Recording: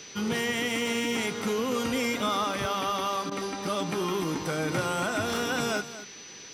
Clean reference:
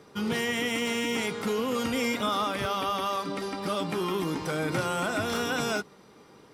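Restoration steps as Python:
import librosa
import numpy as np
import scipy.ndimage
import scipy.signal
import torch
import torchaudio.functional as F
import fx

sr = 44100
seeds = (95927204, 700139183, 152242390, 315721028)

y = fx.notch(x, sr, hz=6000.0, q=30.0)
y = fx.fix_interpolate(y, sr, at_s=(3.3,), length_ms=13.0)
y = fx.noise_reduce(y, sr, print_start_s=6.02, print_end_s=6.52, reduce_db=12.0)
y = fx.fix_echo_inverse(y, sr, delay_ms=231, level_db=-14.0)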